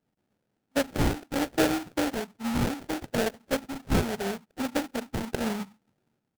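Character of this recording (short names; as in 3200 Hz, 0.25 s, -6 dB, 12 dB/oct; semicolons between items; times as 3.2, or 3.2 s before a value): phasing stages 6, 0.72 Hz, lowest notch 530–2800 Hz; aliases and images of a low sample rate 1100 Hz, jitter 20%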